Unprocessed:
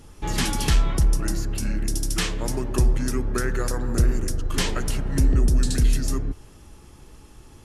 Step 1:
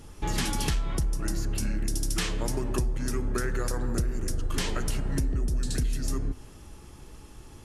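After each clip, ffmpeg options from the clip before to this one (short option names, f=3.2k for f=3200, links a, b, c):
-af "bandreject=f=256.8:t=h:w=4,bandreject=f=513.6:t=h:w=4,bandreject=f=770.4:t=h:w=4,bandreject=f=1.0272k:t=h:w=4,bandreject=f=1.284k:t=h:w=4,bandreject=f=1.5408k:t=h:w=4,bandreject=f=1.7976k:t=h:w=4,bandreject=f=2.0544k:t=h:w=4,bandreject=f=2.3112k:t=h:w=4,bandreject=f=2.568k:t=h:w=4,bandreject=f=2.8248k:t=h:w=4,bandreject=f=3.0816k:t=h:w=4,bandreject=f=3.3384k:t=h:w=4,bandreject=f=3.5952k:t=h:w=4,bandreject=f=3.852k:t=h:w=4,bandreject=f=4.1088k:t=h:w=4,bandreject=f=4.3656k:t=h:w=4,bandreject=f=4.6224k:t=h:w=4,bandreject=f=4.8792k:t=h:w=4,bandreject=f=5.136k:t=h:w=4,bandreject=f=5.3928k:t=h:w=4,bandreject=f=5.6496k:t=h:w=4,bandreject=f=5.9064k:t=h:w=4,bandreject=f=6.1632k:t=h:w=4,bandreject=f=6.42k:t=h:w=4,bandreject=f=6.6768k:t=h:w=4,bandreject=f=6.9336k:t=h:w=4,bandreject=f=7.1904k:t=h:w=4,bandreject=f=7.4472k:t=h:w=4,bandreject=f=7.704k:t=h:w=4,bandreject=f=7.9608k:t=h:w=4,bandreject=f=8.2176k:t=h:w=4,bandreject=f=8.4744k:t=h:w=4,bandreject=f=8.7312k:t=h:w=4,bandreject=f=8.988k:t=h:w=4,bandreject=f=9.2448k:t=h:w=4,bandreject=f=9.5016k:t=h:w=4,bandreject=f=9.7584k:t=h:w=4,bandreject=f=10.0152k:t=h:w=4,acompressor=threshold=-24dB:ratio=6"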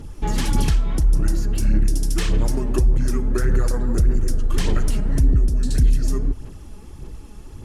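-af "lowshelf=f=480:g=7.5,aphaser=in_gain=1:out_gain=1:delay=4.9:decay=0.46:speed=1.7:type=sinusoidal"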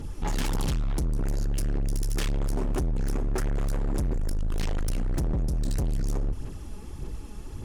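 -af "asoftclip=type=hard:threshold=-24dB"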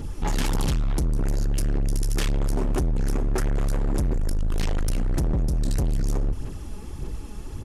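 -af "aresample=32000,aresample=44100,volume=3.5dB"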